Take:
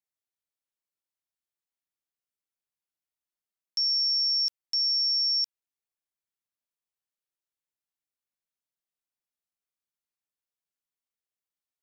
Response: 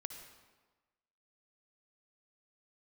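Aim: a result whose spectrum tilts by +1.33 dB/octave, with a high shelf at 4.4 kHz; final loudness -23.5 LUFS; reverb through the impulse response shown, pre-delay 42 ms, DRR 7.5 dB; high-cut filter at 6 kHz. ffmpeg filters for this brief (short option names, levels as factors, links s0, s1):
-filter_complex "[0:a]lowpass=6000,highshelf=f=4400:g=8.5,asplit=2[s0][s1];[1:a]atrim=start_sample=2205,adelay=42[s2];[s1][s2]afir=irnorm=-1:irlink=0,volume=0.562[s3];[s0][s3]amix=inputs=2:normalize=0,volume=0.668"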